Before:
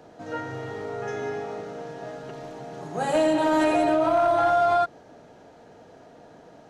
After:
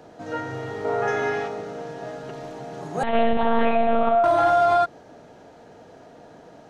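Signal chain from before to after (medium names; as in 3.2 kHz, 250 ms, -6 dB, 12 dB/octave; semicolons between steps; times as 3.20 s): 0.84–1.47 s: peaking EQ 700 Hz -> 2.5 kHz +8.5 dB 2.7 oct; 3.03–4.24 s: monotone LPC vocoder at 8 kHz 230 Hz; trim +2.5 dB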